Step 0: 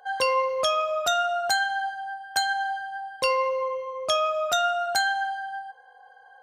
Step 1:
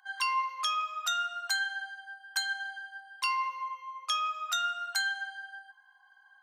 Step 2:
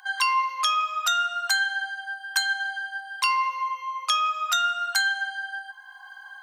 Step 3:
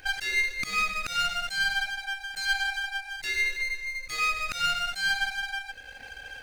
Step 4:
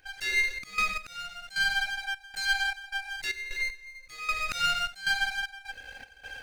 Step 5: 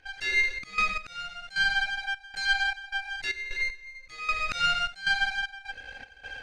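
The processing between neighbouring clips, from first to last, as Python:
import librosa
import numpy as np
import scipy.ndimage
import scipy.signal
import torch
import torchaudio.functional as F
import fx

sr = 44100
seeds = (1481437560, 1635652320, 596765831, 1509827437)

y1 = scipy.signal.sosfilt(scipy.signal.ellip(4, 1.0, 60, 1000.0, 'highpass', fs=sr, output='sos'), x)
y1 = F.gain(torch.from_numpy(y1), -4.0).numpy()
y2 = fx.band_squash(y1, sr, depth_pct=40)
y2 = F.gain(torch.from_numpy(y2), 7.5).numpy()
y3 = fx.lower_of_two(y2, sr, delay_ms=0.48)
y3 = fx.auto_swell(y3, sr, attack_ms=153.0)
y3 = F.gain(torch.from_numpy(y3), 3.0).numpy()
y4 = fx.step_gate(y3, sr, bpm=77, pattern='.xx.x...xxx.xx', floor_db=-12.0, edge_ms=4.5)
y5 = fx.air_absorb(y4, sr, metres=82.0)
y5 = F.gain(torch.from_numpy(y5), 2.5).numpy()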